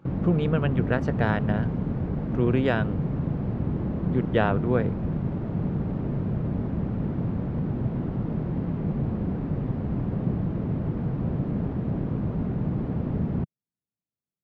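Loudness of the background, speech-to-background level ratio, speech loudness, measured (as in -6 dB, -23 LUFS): -28.5 LUFS, 1.5 dB, -27.0 LUFS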